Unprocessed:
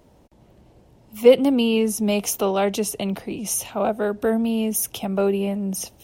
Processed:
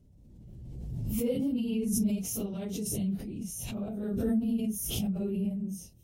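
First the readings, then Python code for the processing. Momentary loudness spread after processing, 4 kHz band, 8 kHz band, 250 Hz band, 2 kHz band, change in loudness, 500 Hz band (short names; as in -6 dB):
10 LU, -13.0 dB, -10.0 dB, -6.5 dB, -19.0 dB, -10.5 dB, -17.5 dB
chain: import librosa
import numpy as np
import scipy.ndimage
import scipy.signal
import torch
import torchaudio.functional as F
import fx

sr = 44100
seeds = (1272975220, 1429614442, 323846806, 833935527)

y = fx.phase_scramble(x, sr, seeds[0], window_ms=100)
y = fx.curve_eq(y, sr, hz=(140.0, 960.0, 7400.0), db=(0, -28, -14))
y = fx.pre_swell(y, sr, db_per_s=27.0)
y = y * 10.0 ** (-2.5 / 20.0)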